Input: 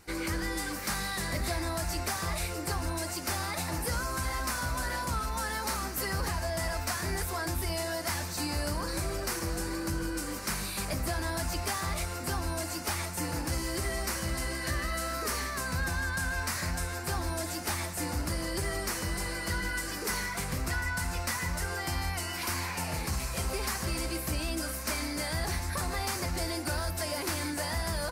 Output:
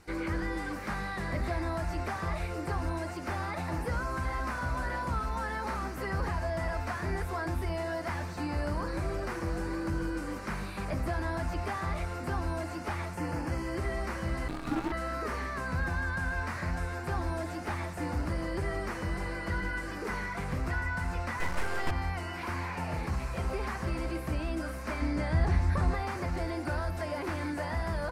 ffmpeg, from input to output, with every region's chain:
ffmpeg -i in.wav -filter_complex "[0:a]asettb=1/sr,asplit=3[link_01][link_02][link_03];[link_01]atrim=end=13.154[link_04];[link_02]atrim=start=13.15:end=13.78,asetpts=PTS-STARTPTS,afade=type=in:duration=0.004:curve=qsin,afade=type=out:start_time=0.626:duration=0.004:curve=qsin,highpass=58,bandreject=frequency=3800:width=5.1[link_05];[link_03]atrim=start=13.776[link_06];[link_04][link_05]acrossfade=duration=0.004:curve1=hsin:curve2=qsin[link_07];[link_07][link_06]acrossfade=duration=0.004:curve1=qsin:curve2=hsin,asettb=1/sr,asplit=3[link_08][link_09][link_10];[link_08]atrim=end=14.484[link_11];[link_09]atrim=start=14.48:end=14.92,asetpts=PTS-STARTPTS,afade=type=in:duration=0.004:curve=qsin,afade=type=out:start_time=0.436:duration=0.004:curve=qsin,equalizer=frequency=2000:width_type=o:width=0.24:gain=-11.5,afreqshift=-380,acrusher=bits=6:dc=4:mix=0:aa=0.000001[link_12];[link_10]atrim=start=14.916[link_13];[link_11][link_12]acrossfade=duration=0.004:curve1=hsin:curve2=qsin[link_14];[link_14][link_13]acrossfade=duration=0.004:curve1=qsin:curve2=hsin,asettb=1/sr,asplit=3[link_15][link_16][link_17];[link_15]atrim=end=21.404[link_18];[link_16]atrim=start=21.4:end=21.91,asetpts=PTS-STARTPTS,afade=type=in:duration=0.004:curve=qsin,afade=type=out:start_time=0.506:duration=0.004:curve=qsin,acontrast=82,bass=frequency=250:gain=-8,treble=frequency=4000:gain=13,aeval=exprs='max(val(0),0)':channel_layout=same[link_19];[link_17]atrim=start=21.906[link_20];[link_18][link_19]acrossfade=duration=0.004:curve1=hsin:curve2=qsin[link_21];[link_21][link_20]acrossfade=duration=0.004:curve1=qsin:curve2=hsin,asettb=1/sr,asplit=3[link_22][link_23][link_24];[link_22]atrim=end=25.014[link_25];[link_23]atrim=start=25.01:end=25.95,asetpts=PTS-STARTPTS,afade=type=in:duration=0.004:curve=qsin,afade=type=out:start_time=0.936:duration=0.004:curve=qsin,lowpass=10000,lowshelf=frequency=250:gain=8.5[link_26];[link_24]atrim=start=25.946[link_27];[link_25][link_26]acrossfade=duration=0.004:curve1=hsin:curve2=qsin[link_28];[link_28][link_27]acrossfade=duration=0.004:curve1=qsin:curve2=hsin,aemphasis=mode=reproduction:type=75fm,acrossover=split=2700[link_29][link_30];[link_30]acompressor=threshold=-57dB:ratio=4:attack=1:release=60[link_31];[link_29][link_31]amix=inputs=2:normalize=0,highshelf=frequency=5700:gain=8.5" out.wav

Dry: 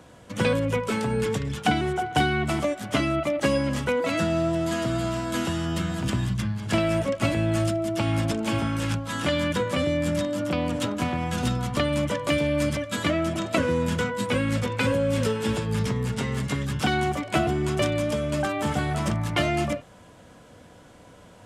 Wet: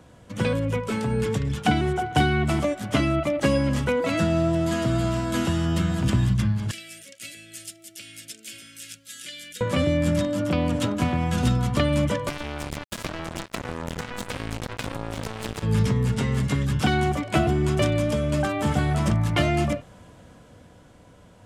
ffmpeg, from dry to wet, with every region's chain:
ffmpeg -i in.wav -filter_complex "[0:a]asettb=1/sr,asplit=3[link_01][link_02][link_03];[link_01]atrim=end=6.714[link_04];[link_02]atrim=start=6.71:end=9.61,asetpts=PTS-STARTPTS,afade=type=in:duration=0.004:curve=qsin,afade=type=out:start_time=2.896:duration=0.004:curve=qsin,asuperstop=centerf=920:order=4:qfactor=0.79,aderivative[link_05];[link_03]atrim=start=9.606[link_06];[link_04][link_05]acrossfade=duration=0.004:curve1=hsin:curve2=qsin[link_07];[link_07][link_06]acrossfade=duration=0.004:curve1=qsin:curve2=hsin,asettb=1/sr,asplit=3[link_08][link_09][link_10];[link_08]atrim=end=12.284[link_11];[link_09]atrim=start=12.28:end=15.63,asetpts=PTS-STARTPTS,afade=type=in:duration=0.004:curve=qsin,afade=type=out:start_time=3.346:duration=0.004:curve=qsin,acompressor=threshold=-25dB:ratio=20:attack=3.2:release=140:knee=1:detection=peak,acrusher=bits=3:mix=0:aa=0.5[link_12];[link_10]atrim=start=15.626[link_13];[link_11][link_12]acrossfade=duration=0.004:curve1=hsin:curve2=qsin[link_14];[link_14][link_13]acrossfade=duration=0.004:curve1=qsin:curve2=hsin,lowshelf=frequency=190:gain=7,dynaudnorm=framelen=120:gausssize=21:maxgain=4dB,volume=-3.5dB" out.wav

